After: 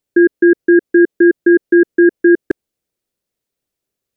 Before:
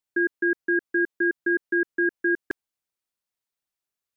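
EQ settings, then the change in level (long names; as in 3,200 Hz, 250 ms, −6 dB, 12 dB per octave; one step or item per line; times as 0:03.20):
low shelf with overshoot 660 Hz +8.5 dB, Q 1.5
+6.5 dB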